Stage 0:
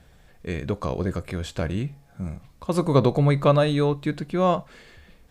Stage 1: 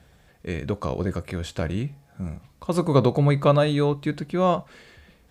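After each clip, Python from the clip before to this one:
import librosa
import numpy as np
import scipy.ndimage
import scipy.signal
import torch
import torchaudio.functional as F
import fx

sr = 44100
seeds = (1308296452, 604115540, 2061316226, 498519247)

y = scipy.signal.sosfilt(scipy.signal.butter(2, 48.0, 'highpass', fs=sr, output='sos'), x)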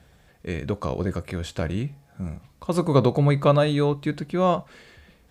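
y = x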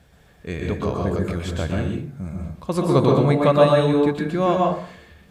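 y = fx.rev_plate(x, sr, seeds[0], rt60_s=0.54, hf_ratio=0.55, predelay_ms=110, drr_db=-0.5)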